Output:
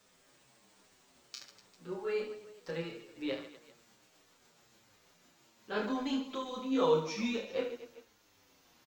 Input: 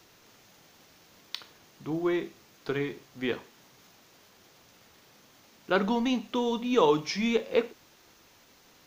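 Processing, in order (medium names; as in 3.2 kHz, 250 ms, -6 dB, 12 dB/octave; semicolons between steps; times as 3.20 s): pitch bend over the whole clip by +4.5 st ending unshifted; reverse bouncing-ball echo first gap 30 ms, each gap 1.5×, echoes 5; endless flanger 7.4 ms -1.2 Hz; trim -5.5 dB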